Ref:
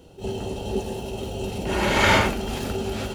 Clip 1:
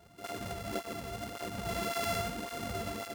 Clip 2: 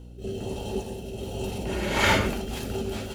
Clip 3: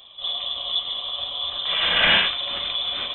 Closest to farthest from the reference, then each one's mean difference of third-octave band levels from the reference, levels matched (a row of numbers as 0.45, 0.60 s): 2, 1, 3; 2.0, 7.5, 16.0 dB